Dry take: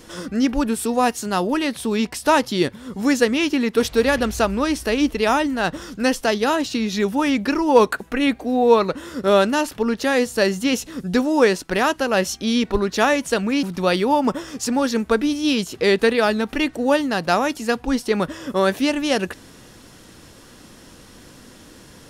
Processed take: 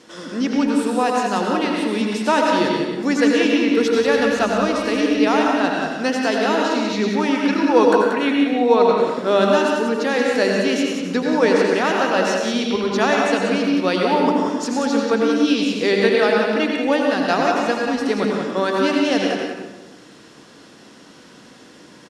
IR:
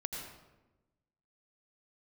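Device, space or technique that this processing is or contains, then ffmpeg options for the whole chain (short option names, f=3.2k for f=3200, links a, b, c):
supermarket ceiling speaker: -filter_complex "[0:a]highpass=200,lowpass=6.6k[a];[1:a]atrim=start_sample=2205[b];[a][b]afir=irnorm=-1:irlink=0,aecho=1:1:183:0.473"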